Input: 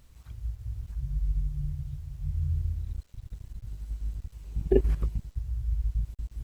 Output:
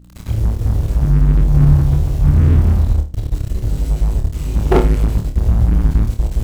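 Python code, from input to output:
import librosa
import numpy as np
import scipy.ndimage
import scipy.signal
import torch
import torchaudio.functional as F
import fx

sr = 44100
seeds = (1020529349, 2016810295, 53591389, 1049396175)

y = fx.hpss(x, sr, part='harmonic', gain_db=5)
y = fx.leveller(y, sr, passes=5)
y = fx.add_hum(y, sr, base_hz=60, snr_db=30)
y = fx.room_flutter(y, sr, wall_m=4.7, rt60_s=0.31)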